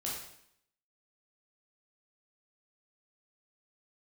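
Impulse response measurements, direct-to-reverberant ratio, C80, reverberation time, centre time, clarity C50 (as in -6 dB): -5.0 dB, 5.0 dB, 0.70 s, 53 ms, 1.5 dB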